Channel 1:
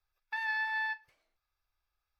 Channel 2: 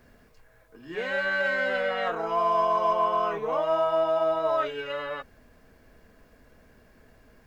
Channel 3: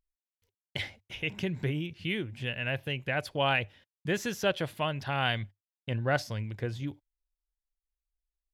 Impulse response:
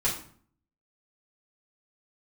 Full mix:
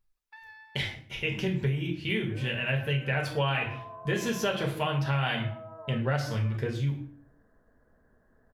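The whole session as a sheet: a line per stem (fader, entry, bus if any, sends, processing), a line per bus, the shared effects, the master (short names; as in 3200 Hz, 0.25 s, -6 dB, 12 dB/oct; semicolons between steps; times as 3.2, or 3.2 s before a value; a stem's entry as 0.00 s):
-6.5 dB, 0.00 s, no send, auto duck -21 dB, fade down 1.05 s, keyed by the third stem
-8.5 dB, 1.35 s, no send, steep low-pass 1900 Hz 96 dB/oct; compressor 3:1, threshold -38 dBFS, peak gain reduction 13.5 dB
-3.5 dB, 0.00 s, send -3 dB, dry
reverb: on, RT60 0.50 s, pre-delay 4 ms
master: compressor, threshold -24 dBFS, peak gain reduction 7.5 dB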